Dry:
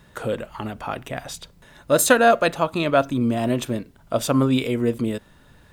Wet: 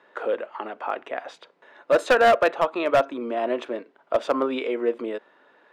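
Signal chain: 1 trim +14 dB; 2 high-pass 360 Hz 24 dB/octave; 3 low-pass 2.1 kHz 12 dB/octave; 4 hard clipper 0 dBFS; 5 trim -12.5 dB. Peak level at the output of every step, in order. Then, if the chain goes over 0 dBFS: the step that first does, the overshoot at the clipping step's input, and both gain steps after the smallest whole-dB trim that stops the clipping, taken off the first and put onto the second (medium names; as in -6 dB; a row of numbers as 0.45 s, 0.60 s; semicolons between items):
+11.0 dBFS, +11.0 dBFS, +10.0 dBFS, 0.0 dBFS, -12.5 dBFS; step 1, 10.0 dB; step 1 +4 dB, step 5 -2.5 dB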